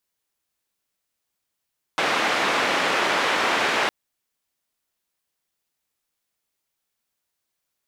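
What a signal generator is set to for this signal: noise band 300–2100 Hz, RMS -22 dBFS 1.91 s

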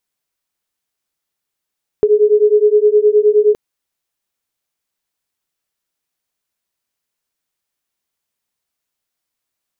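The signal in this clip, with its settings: beating tones 416 Hz, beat 9.6 Hz, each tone -11 dBFS 1.52 s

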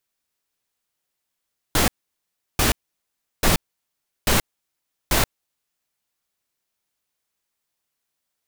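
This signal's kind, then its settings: noise bursts pink, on 0.13 s, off 0.71 s, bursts 5, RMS -17.5 dBFS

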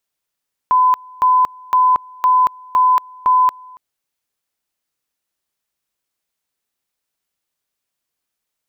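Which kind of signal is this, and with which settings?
two-level tone 1.01 kHz -9 dBFS, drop 26.5 dB, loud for 0.23 s, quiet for 0.28 s, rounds 6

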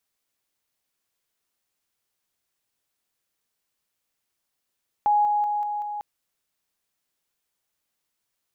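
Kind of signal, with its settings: level ladder 832 Hz -16.5 dBFS, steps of -3 dB, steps 5, 0.19 s 0.00 s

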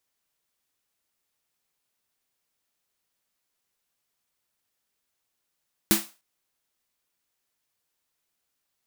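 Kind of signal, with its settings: snare drum length 0.30 s, tones 210 Hz, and 330 Hz, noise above 580 Hz, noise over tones 1 dB, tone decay 0.21 s, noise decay 0.31 s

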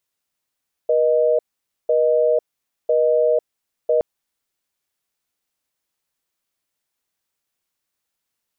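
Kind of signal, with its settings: call progress tone busy tone, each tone -16.5 dBFS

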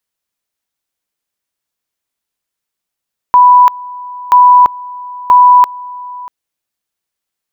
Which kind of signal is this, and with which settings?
two-level tone 989 Hz -1.5 dBFS, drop 21.5 dB, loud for 0.34 s, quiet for 0.64 s, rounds 3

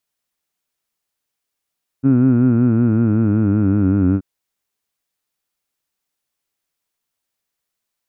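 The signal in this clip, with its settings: formant vowel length 2.18 s, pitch 131 Hz, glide -6 st, F1 270 Hz, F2 1.4 kHz, F3 2.5 kHz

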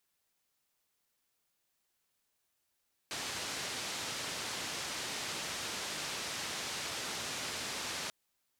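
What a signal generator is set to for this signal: noise band 84–6200 Hz, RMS -39.5 dBFS 4.99 s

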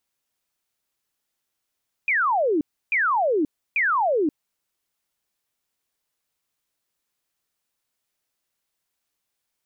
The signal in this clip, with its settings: burst of laser zaps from 2.5 kHz, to 280 Hz, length 0.53 s sine, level -18 dB, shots 3, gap 0.31 s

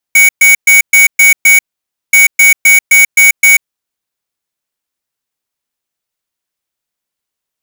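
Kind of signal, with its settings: beep pattern square 2.24 kHz, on 0.14 s, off 0.12 s, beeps 6, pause 0.54 s, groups 2, -4.5 dBFS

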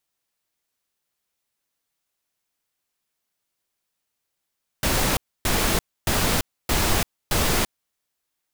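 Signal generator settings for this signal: noise bursts pink, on 0.34 s, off 0.28 s, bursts 5, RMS -21 dBFS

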